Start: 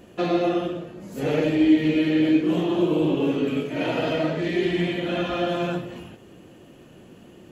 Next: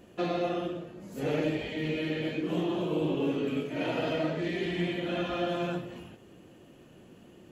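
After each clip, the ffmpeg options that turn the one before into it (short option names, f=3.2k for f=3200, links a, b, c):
-af "afftfilt=real='re*lt(hypot(re,im),1)':imag='im*lt(hypot(re,im),1)':win_size=1024:overlap=0.75,volume=-6dB"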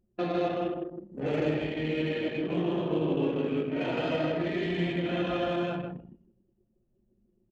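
-af "aecho=1:1:158|316|474|632:0.631|0.202|0.0646|0.0207,anlmdn=3.98"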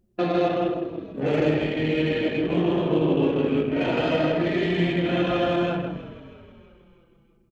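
-filter_complex "[0:a]asplit=6[a][b][c][d][e][f];[b]adelay=321,afreqshift=-41,volume=-17dB[g];[c]adelay=642,afreqshift=-82,volume=-22.7dB[h];[d]adelay=963,afreqshift=-123,volume=-28.4dB[i];[e]adelay=1284,afreqshift=-164,volume=-34dB[j];[f]adelay=1605,afreqshift=-205,volume=-39.7dB[k];[a][g][h][i][j][k]amix=inputs=6:normalize=0,volume=6.5dB"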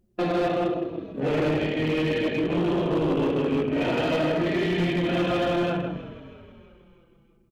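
-af "asoftclip=type=hard:threshold=-19.5dB"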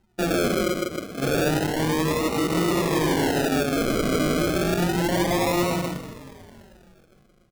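-af "acrusher=samples=38:mix=1:aa=0.000001:lfo=1:lforange=22.8:lforate=0.3,volume=1.5dB"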